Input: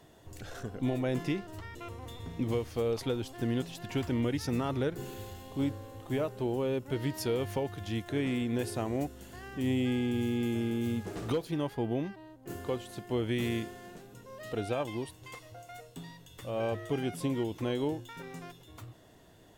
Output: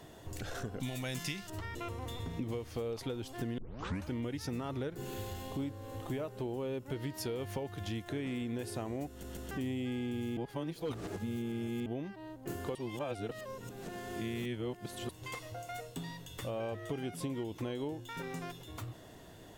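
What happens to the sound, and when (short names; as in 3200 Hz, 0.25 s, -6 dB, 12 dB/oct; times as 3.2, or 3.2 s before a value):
0.8–1.5 EQ curve 190 Hz 0 dB, 340 Hz -9 dB, 6000 Hz +15 dB
3.58 tape start 0.54 s
9.09 stutter in place 0.14 s, 3 plays
10.37–11.86 reverse
12.75–15.09 reverse
whole clip: compressor 4:1, threshold -42 dBFS; gain +5 dB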